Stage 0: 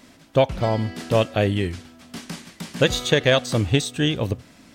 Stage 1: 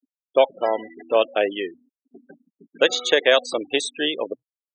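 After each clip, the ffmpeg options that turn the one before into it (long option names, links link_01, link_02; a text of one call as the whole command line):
ffmpeg -i in.wav -af "afftfilt=real='re*gte(hypot(re,im),0.0501)':imag='im*gte(hypot(re,im),0.0501)':win_size=1024:overlap=0.75,highpass=frequency=360:width=0.5412,highpass=frequency=360:width=1.3066,volume=2dB" out.wav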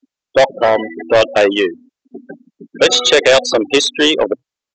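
ffmpeg -i in.wav -af "acontrast=67,aresample=16000,asoftclip=type=tanh:threshold=-13dB,aresample=44100,volume=8dB" out.wav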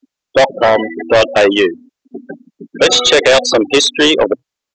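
ffmpeg -i in.wav -af "apsyclip=9dB,volume=-5dB" out.wav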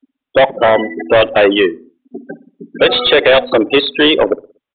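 ffmpeg -i in.wav -filter_complex "[0:a]asplit=2[link_01][link_02];[link_02]adelay=60,lowpass=frequency=860:poles=1,volume=-18dB,asplit=2[link_03][link_04];[link_04]adelay=60,lowpass=frequency=860:poles=1,volume=0.47,asplit=2[link_05][link_06];[link_06]adelay=60,lowpass=frequency=860:poles=1,volume=0.47,asplit=2[link_07][link_08];[link_08]adelay=60,lowpass=frequency=860:poles=1,volume=0.47[link_09];[link_01][link_03][link_05][link_07][link_09]amix=inputs=5:normalize=0,aresample=8000,aresample=44100" out.wav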